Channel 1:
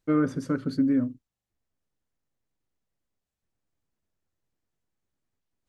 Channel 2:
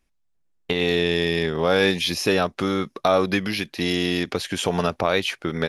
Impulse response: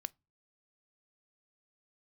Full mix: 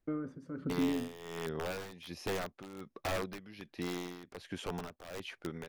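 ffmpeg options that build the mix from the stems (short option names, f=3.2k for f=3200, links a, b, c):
-filter_complex "[0:a]bandreject=f=58.08:t=h:w=4,bandreject=f=116.16:t=h:w=4,bandreject=f=174.24:t=h:w=4,alimiter=limit=-22.5dB:level=0:latency=1:release=27,volume=-3dB[a];[1:a]aeval=exprs='(mod(4.47*val(0)+1,2)-1)/4.47':c=same,volume=-12dB[b];[a][b]amix=inputs=2:normalize=0,highshelf=f=2.6k:g=-11,tremolo=f=1.3:d=0.78"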